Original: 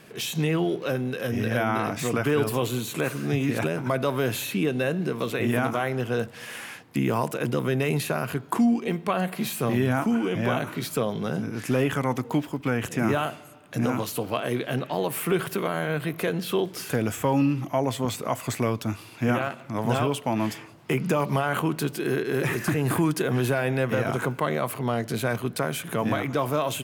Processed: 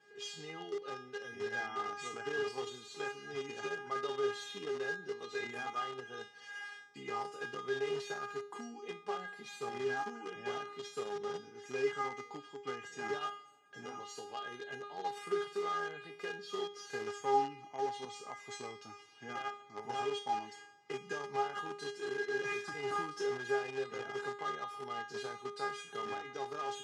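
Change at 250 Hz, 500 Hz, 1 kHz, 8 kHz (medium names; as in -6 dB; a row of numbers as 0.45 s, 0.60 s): -24.0 dB, -11.5 dB, -8.5 dB, -15.5 dB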